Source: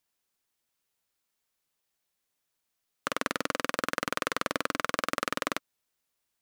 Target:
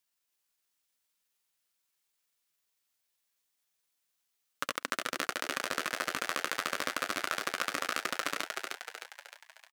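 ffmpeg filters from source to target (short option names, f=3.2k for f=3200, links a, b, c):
-filter_complex "[0:a]tiltshelf=f=1.1k:g=-4,atempo=0.66,asplit=8[a][b][c][d][e][f][g][h];[b]adelay=308,afreqshift=91,volume=-3.5dB[i];[c]adelay=616,afreqshift=182,volume=-9.5dB[j];[d]adelay=924,afreqshift=273,volume=-15.5dB[k];[e]adelay=1232,afreqshift=364,volume=-21.6dB[l];[f]adelay=1540,afreqshift=455,volume=-27.6dB[m];[g]adelay=1848,afreqshift=546,volume=-33.6dB[n];[h]adelay=2156,afreqshift=637,volume=-39.6dB[o];[a][i][j][k][l][m][n][o]amix=inputs=8:normalize=0,volume=-4dB"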